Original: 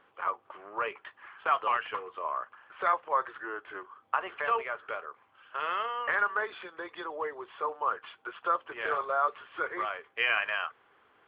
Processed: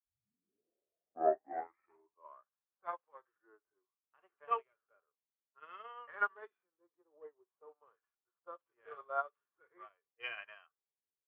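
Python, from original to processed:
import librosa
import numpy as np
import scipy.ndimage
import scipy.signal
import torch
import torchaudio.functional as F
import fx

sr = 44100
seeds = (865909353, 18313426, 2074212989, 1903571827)

y = fx.tape_start_head(x, sr, length_s=2.35)
y = fx.env_lowpass(y, sr, base_hz=380.0, full_db=-24.5)
y = fx.hpss(y, sr, part='percussive', gain_db=-18)
y = fx.upward_expand(y, sr, threshold_db=-48.0, expansion=2.5)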